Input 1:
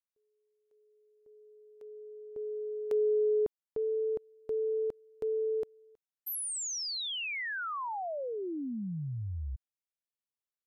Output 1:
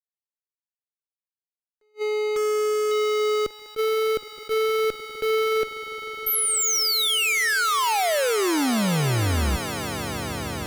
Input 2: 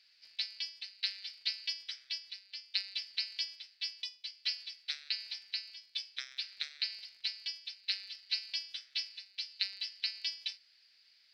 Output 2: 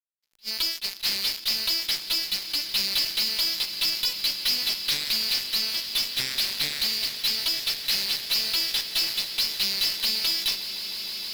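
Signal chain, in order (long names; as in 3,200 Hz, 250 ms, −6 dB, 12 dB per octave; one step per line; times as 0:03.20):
fuzz pedal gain 55 dB, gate −51 dBFS
echo that builds up and dies away 154 ms, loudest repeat 8, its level −18 dB
level that may rise only so fast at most 470 dB per second
level −8.5 dB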